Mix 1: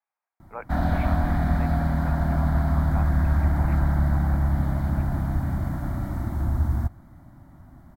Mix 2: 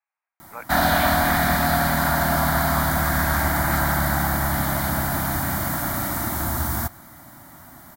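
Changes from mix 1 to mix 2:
background +11.5 dB; master: add tilt EQ +4.5 dB/octave

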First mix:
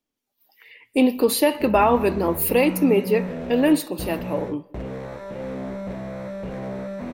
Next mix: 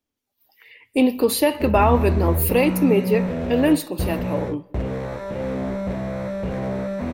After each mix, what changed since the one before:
background +4.5 dB; master: add peaking EQ 82 Hz +12 dB 0.56 oct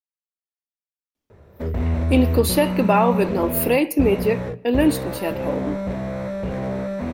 speech: entry +1.15 s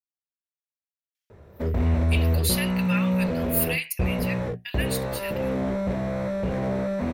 speech: add inverse Chebyshev high-pass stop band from 480 Hz, stop band 60 dB; reverb: off

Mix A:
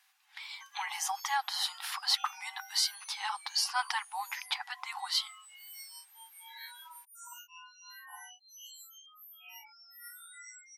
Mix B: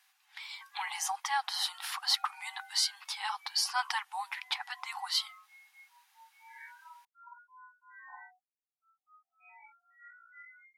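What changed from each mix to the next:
background: add brick-wall FIR low-pass 2.5 kHz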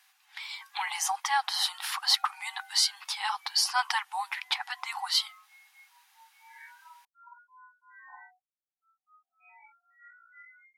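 speech +4.5 dB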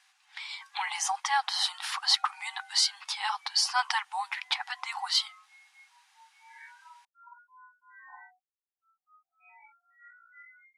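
master: add low-pass 9.4 kHz 24 dB/octave

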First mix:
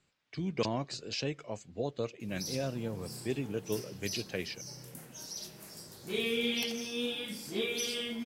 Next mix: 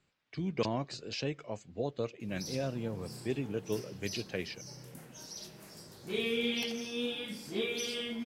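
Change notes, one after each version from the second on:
master: add treble shelf 6.2 kHz -8 dB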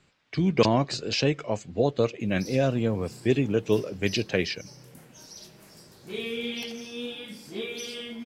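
speech +11.5 dB

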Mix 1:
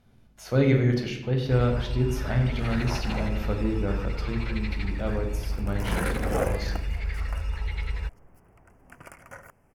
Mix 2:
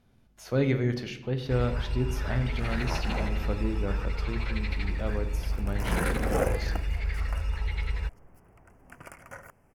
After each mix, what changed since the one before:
speech: send -8.0 dB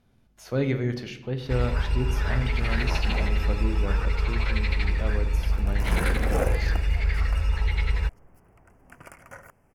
first sound +6.0 dB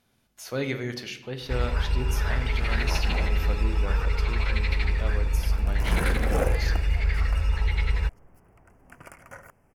speech: add tilt EQ +2.5 dB/octave

